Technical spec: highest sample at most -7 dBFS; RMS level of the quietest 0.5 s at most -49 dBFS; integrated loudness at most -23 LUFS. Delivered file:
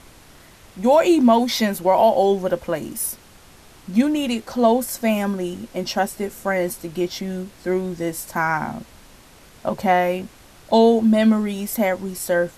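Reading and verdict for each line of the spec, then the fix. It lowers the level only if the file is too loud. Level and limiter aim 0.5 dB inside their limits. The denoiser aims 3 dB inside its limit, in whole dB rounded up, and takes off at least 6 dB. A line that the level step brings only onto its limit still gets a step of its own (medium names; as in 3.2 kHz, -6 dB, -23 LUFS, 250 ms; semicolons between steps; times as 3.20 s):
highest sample -5.5 dBFS: fail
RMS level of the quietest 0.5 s -47 dBFS: fail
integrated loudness -20.5 LUFS: fail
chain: trim -3 dB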